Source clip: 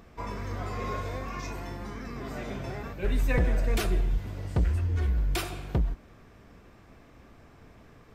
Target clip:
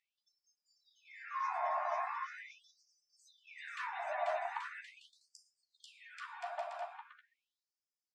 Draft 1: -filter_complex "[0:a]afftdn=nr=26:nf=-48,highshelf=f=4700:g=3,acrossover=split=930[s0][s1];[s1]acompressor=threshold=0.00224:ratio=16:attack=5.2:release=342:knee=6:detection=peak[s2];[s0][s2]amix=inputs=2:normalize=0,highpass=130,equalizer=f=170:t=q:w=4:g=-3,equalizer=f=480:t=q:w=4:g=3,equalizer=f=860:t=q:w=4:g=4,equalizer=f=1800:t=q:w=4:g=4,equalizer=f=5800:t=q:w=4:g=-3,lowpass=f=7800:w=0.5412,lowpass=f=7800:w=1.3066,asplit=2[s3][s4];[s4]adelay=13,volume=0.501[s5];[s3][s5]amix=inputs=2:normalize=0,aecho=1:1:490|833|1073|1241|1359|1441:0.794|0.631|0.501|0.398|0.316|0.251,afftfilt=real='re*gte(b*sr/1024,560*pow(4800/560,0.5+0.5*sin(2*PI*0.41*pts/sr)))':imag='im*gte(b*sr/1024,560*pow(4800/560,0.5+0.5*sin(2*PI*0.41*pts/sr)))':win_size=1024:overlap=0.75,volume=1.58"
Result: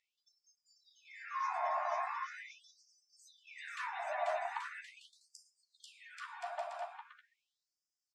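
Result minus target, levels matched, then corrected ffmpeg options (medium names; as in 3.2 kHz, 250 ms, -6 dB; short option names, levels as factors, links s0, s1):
8 kHz band +4.0 dB
-filter_complex "[0:a]afftdn=nr=26:nf=-48,highshelf=f=4700:g=-8,acrossover=split=930[s0][s1];[s1]acompressor=threshold=0.00224:ratio=16:attack=5.2:release=342:knee=6:detection=peak[s2];[s0][s2]amix=inputs=2:normalize=0,highpass=130,equalizer=f=170:t=q:w=4:g=-3,equalizer=f=480:t=q:w=4:g=3,equalizer=f=860:t=q:w=4:g=4,equalizer=f=1800:t=q:w=4:g=4,equalizer=f=5800:t=q:w=4:g=-3,lowpass=f=7800:w=0.5412,lowpass=f=7800:w=1.3066,asplit=2[s3][s4];[s4]adelay=13,volume=0.501[s5];[s3][s5]amix=inputs=2:normalize=0,aecho=1:1:490|833|1073|1241|1359|1441:0.794|0.631|0.501|0.398|0.316|0.251,afftfilt=real='re*gte(b*sr/1024,560*pow(4800/560,0.5+0.5*sin(2*PI*0.41*pts/sr)))':imag='im*gte(b*sr/1024,560*pow(4800/560,0.5+0.5*sin(2*PI*0.41*pts/sr)))':win_size=1024:overlap=0.75,volume=1.58"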